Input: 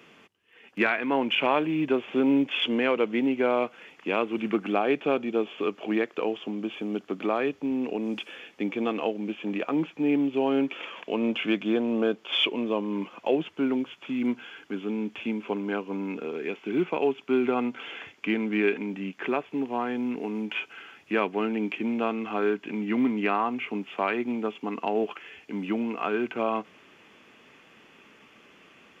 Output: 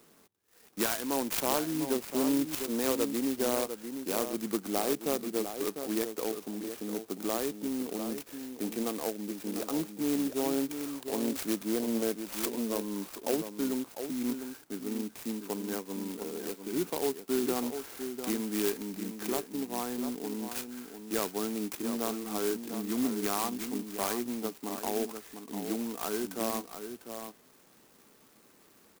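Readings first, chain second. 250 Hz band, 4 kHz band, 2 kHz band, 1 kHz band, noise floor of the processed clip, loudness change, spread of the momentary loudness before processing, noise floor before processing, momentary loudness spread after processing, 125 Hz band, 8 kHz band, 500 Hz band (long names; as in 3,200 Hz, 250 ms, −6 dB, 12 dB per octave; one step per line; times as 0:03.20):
−5.5 dB, −7.0 dB, −11.5 dB, −7.5 dB, −61 dBFS, −5.0 dB, 9 LU, −57 dBFS, 8 LU, −5.0 dB, can't be measured, −6.0 dB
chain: linear-phase brick-wall low-pass 3,000 Hz
slap from a distant wall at 120 metres, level −8 dB
converter with an unsteady clock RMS 0.12 ms
level −6 dB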